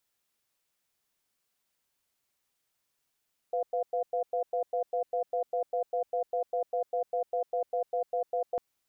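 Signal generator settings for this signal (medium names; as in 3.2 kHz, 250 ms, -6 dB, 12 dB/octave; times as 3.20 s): cadence 501 Hz, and 700 Hz, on 0.10 s, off 0.10 s, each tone -29.5 dBFS 5.05 s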